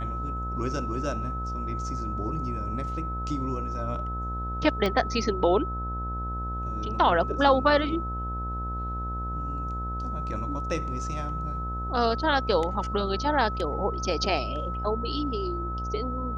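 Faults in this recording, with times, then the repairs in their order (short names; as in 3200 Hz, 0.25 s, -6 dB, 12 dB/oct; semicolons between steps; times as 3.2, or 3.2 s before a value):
buzz 60 Hz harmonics 19 -33 dBFS
tone 1300 Hz -33 dBFS
4.86 pop -15 dBFS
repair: de-click; notch 1300 Hz, Q 30; de-hum 60 Hz, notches 19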